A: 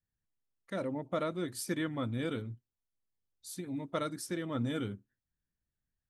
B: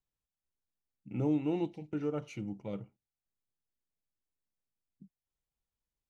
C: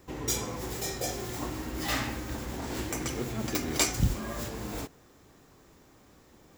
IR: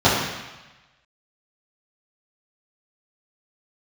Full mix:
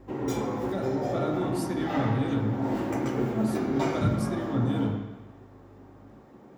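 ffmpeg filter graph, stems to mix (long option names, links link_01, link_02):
-filter_complex "[0:a]aeval=exprs='val(0)+0.00178*(sin(2*PI*50*n/s)+sin(2*PI*2*50*n/s)/2+sin(2*PI*3*50*n/s)/3+sin(2*PI*4*50*n/s)/4+sin(2*PI*5*50*n/s)/5)':channel_layout=same,volume=-3dB,asplit=3[link_01][link_02][link_03];[link_02]volume=-22.5dB[link_04];[1:a]volume=-5dB[link_05];[2:a]acrossover=split=160 2200:gain=0.112 1 0.158[link_06][link_07][link_08];[link_06][link_07][link_08]amix=inputs=3:normalize=0,volume=1.5dB,asplit=2[link_09][link_10];[link_10]volume=-23dB[link_11];[link_03]apad=whole_len=289836[link_12];[link_09][link_12]sidechaincompress=threshold=-55dB:ratio=8:attack=16:release=172[link_13];[3:a]atrim=start_sample=2205[link_14];[link_04][link_11]amix=inputs=2:normalize=0[link_15];[link_15][link_14]afir=irnorm=-1:irlink=0[link_16];[link_01][link_05][link_13][link_16]amix=inputs=4:normalize=0,bass=frequency=250:gain=4,treble=frequency=4000:gain=0"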